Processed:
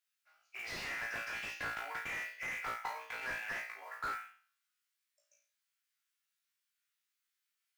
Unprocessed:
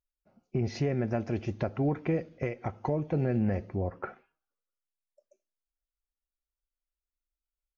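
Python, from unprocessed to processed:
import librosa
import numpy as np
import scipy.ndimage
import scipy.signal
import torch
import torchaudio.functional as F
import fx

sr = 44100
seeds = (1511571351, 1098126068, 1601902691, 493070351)

y = scipy.signal.sosfilt(scipy.signal.butter(4, 1500.0, 'highpass', fs=sr, output='sos'), x)
y = fx.high_shelf(y, sr, hz=3000.0, db=-7.5)
y = fx.room_flutter(y, sr, wall_m=3.0, rt60_s=0.44)
y = fx.mod_noise(y, sr, seeds[0], snr_db=20)
y = fx.slew_limit(y, sr, full_power_hz=5.9)
y = F.gain(torch.from_numpy(y), 12.5).numpy()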